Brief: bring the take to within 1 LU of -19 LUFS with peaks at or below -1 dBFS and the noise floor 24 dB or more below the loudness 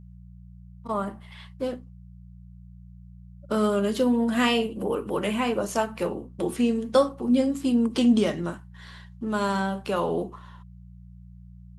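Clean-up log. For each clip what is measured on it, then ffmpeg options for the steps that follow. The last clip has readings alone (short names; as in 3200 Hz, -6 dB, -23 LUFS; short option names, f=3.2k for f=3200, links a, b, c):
hum 60 Hz; harmonics up to 180 Hz; hum level -44 dBFS; loudness -25.5 LUFS; peak -9.0 dBFS; loudness target -19.0 LUFS
-> -af "bandreject=f=60:t=h:w=4,bandreject=f=120:t=h:w=4,bandreject=f=180:t=h:w=4"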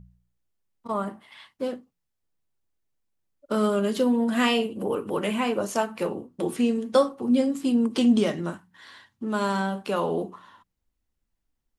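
hum none; loudness -25.5 LUFS; peak -9.0 dBFS; loudness target -19.0 LUFS
-> -af "volume=6.5dB"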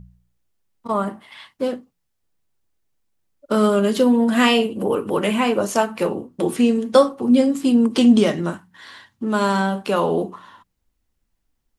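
loudness -19.0 LUFS; peak -2.5 dBFS; noise floor -73 dBFS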